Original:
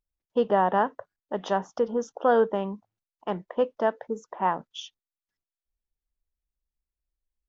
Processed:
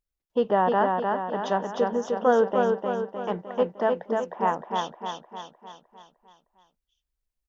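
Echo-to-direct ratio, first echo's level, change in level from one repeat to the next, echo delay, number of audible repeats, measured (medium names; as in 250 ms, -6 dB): -2.0 dB, -3.5 dB, -5.5 dB, 305 ms, 6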